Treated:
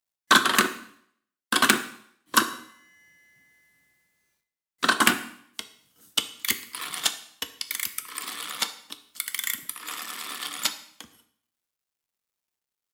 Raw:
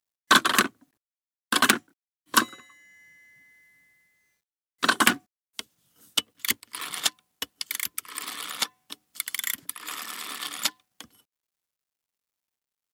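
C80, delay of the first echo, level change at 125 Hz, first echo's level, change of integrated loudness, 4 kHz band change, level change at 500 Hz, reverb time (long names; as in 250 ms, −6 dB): 15.5 dB, no echo audible, +0.5 dB, no echo audible, +0.5 dB, +0.5 dB, +1.0 dB, 0.65 s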